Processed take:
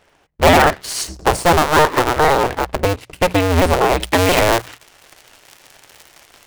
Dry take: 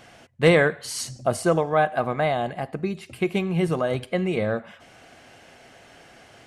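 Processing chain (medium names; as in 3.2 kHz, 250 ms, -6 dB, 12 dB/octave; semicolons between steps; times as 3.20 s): cycle switcher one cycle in 2, inverted; treble shelf 2.4 kHz -4 dB, from 4.00 s +7.5 dB; waveshaping leveller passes 3; peaking EQ 210 Hz -7.5 dB 0.55 oct; hum notches 60/120/180 Hz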